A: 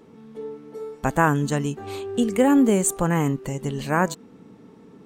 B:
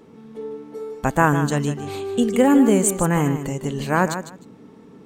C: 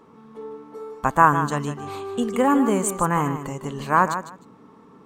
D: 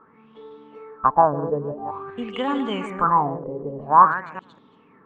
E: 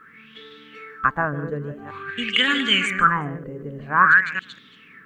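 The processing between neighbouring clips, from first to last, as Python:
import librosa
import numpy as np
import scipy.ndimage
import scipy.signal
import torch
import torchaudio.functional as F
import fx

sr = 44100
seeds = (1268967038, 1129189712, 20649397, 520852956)

y1 = fx.echo_feedback(x, sr, ms=153, feedback_pct=17, wet_db=-10.0)
y1 = y1 * 10.0 ** (2.0 / 20.0)
y2 = fx.peak_eq(y1, sr, hz=1100.0, db=13.5, octaves=0.77)
y2 = y2 * 10.0 ** (-5.5 / 20.0)
y3 = fx.reverse_delay(y2, sr, ms=191, wet_db=-9.0)
y3 = fx.filter_lfo_lowpass(y3, sr, shape='sine', hz=0.49, low_hz=480.0, high_hz=3600.0, q=6.9)
y3 = y3 * 10.0 ** (-6.5 / 20.0)
y4 = fx.curve_eq(y3, sr, hz=(180.0, 540.0, 910.0, 1600.0), db=(0, -9, -17, 15))
y4 = y4 * 10.0 ** (2.0 / 20.0)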